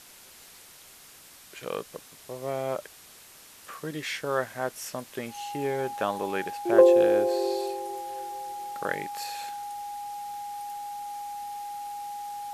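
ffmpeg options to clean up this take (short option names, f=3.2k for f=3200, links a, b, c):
-af "adeclick=t=4,bandreject=f=820:w=30,afwtdn=0.0035"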